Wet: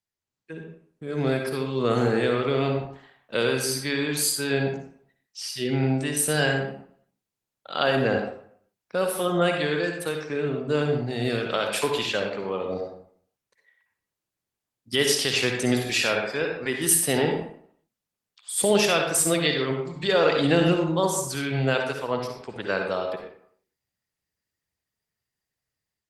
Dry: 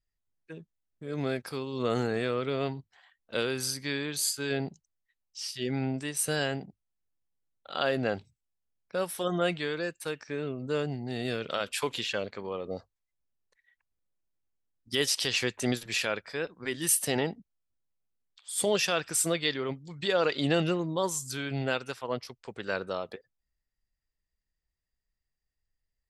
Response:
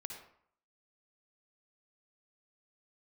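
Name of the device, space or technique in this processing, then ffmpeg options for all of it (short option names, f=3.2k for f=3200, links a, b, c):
far-field microphone of a smart speaker: -filter_complex "[1:a]atrim=start_sample=2205[a];[0:a][a]afir=irnorm=-1:irlink=0,highpass=f=87:w=0.5412,highpass=f=87:w=1.3066,dynaudnorm=f=180:g=3:m=10dB" -ar 48000 -c:a libopus -b:a 24k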